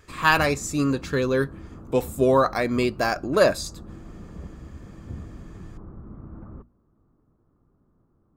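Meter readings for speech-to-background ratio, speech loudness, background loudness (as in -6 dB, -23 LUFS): 19.0 dB, -23.0 LUFS, -42.0 LUFS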